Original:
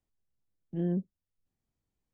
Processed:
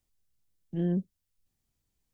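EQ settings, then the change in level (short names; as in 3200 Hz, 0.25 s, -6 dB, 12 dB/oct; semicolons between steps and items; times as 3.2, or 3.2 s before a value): low shelf 120 Hz +6.5 dB; high shelf 2300 Hz +10.5 dB; 0.0 dB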